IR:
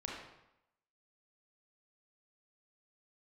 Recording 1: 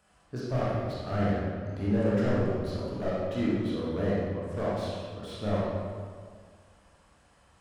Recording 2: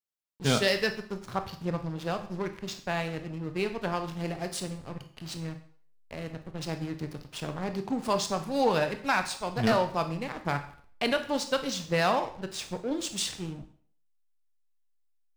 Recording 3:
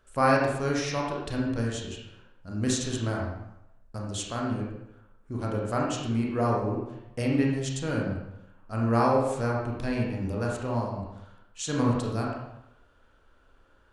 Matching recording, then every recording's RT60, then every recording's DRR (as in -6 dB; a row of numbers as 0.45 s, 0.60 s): 3; 1.8 s, 0.55 s, 0.85 s; -7.5 dB, 7.5 dB, -3.0 dB